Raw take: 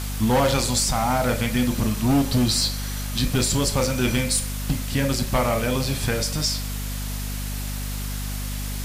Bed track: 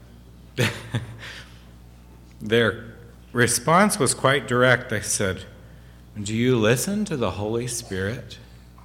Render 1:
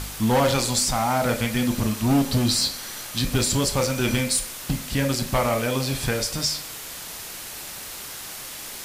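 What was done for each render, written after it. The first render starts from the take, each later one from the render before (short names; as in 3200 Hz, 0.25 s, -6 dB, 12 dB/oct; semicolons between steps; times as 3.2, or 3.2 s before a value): de-hum 50 Hz, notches 5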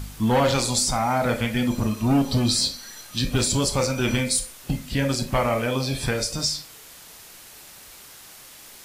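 noise print and reduce 9 dB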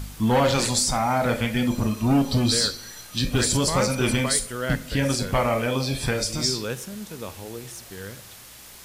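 add bed track -11.5 dB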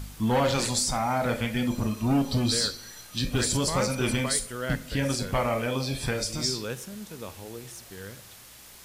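gain -4 dB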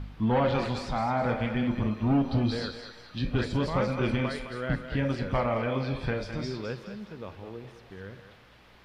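air absorption 350 m; thinning echo 0.21 s, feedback 41%, high-pass 520 Hz, level -8 dB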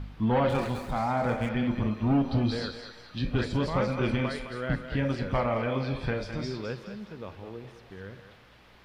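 0.49–1.49 median filter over 9 samples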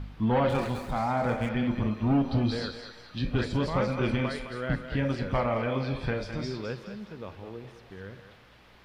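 nothing audible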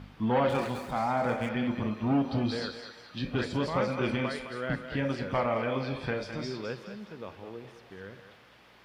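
HPF 190 Hz 6 dB/oct; notch 4000 Hz, Q 27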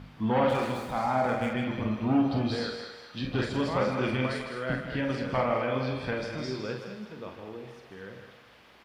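loudspeakers at several distances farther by 16 m -6 dB, 53 m -9 dB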